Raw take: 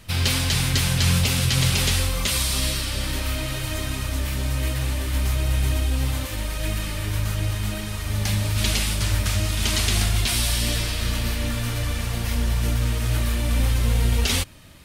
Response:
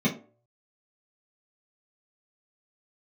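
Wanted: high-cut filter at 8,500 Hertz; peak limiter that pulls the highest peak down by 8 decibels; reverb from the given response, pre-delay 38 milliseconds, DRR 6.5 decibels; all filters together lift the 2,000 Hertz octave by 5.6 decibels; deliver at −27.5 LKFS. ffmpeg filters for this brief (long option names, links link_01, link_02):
-filter_complex "[0:a]lowpass=8500,equalizer=frequency=2000:width_type=o:gain=7,alimiter=limit=-14dB:level=0:latency=1,asplit=2[link_01][link_02];[1:a]atrim=start_sample=2205,adelay=38[link_03];[link_02][link_03]afir=irnorm=-1:irlink=0,volume=-17.5dB[link_04];[link_01][link_04]amix=inputs=2:normalize=0,volume=-5dB"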